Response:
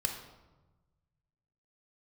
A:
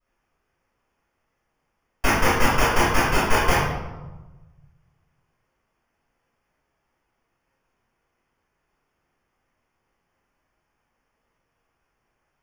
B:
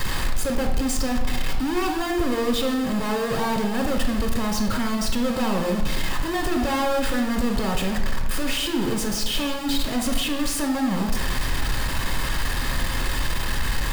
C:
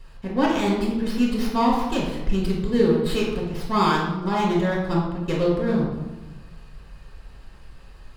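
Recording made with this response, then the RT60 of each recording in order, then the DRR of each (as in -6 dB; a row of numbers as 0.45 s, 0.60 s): B; 1.1 s, 1.2 s, 1.1 s; -13.5 dB, 2.5 dB, -4.5 dB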